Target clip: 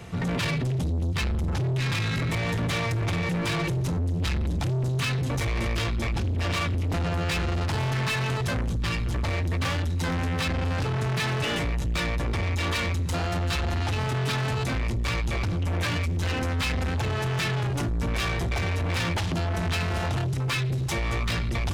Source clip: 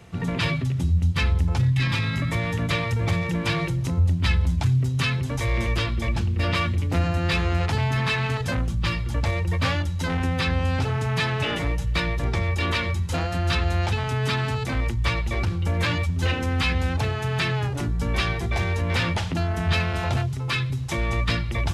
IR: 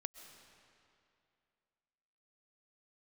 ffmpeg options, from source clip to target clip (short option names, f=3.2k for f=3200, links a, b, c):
-filter_complex "[0:a]asplit=2[a][b];[b]alimiter=limit=-19.5dB:level=0:latency=1,volume=0dB[c];[a][c]amix=inputs=2:normalize=0,asoftclip=type=tanh:threshold=-24dB"